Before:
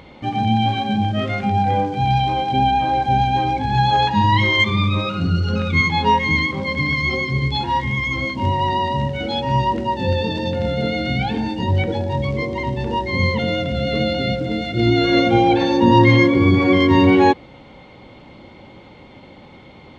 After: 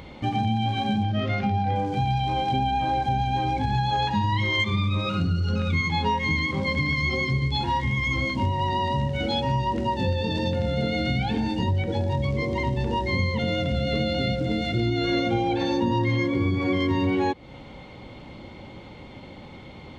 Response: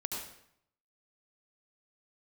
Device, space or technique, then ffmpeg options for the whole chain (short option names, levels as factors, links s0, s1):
ASMR close-microphone chain: -filter_complex "[0:a]asettb=1/sr,asplit=3[s0][s1][s2];[s0]atrim=end=1.034[s3];[s1]atrim=start=1.03:end=1.76,asetpts=PTS-STARTPTS,afade=t=in:d=0.004:c=qsin,afade=t=out:st=0.726:d=0.004:c=qsin,lowpass=f=5600:w=0.5412,lowpass=f=5600:w=1.3066[s4];[s2]atrim=start=1.756[s5];[s3][s4]acrossfade=d=0.004:c1=hsin:c2=qsin[s6];[s6][s5]acrossfade=d=0.004:c1=qsin:c2=hsin,lowshelf=f=150:g=6,acompressor=threshold=0.1:ratio=5,highshelf=f=6100:g=7,volume=0.841"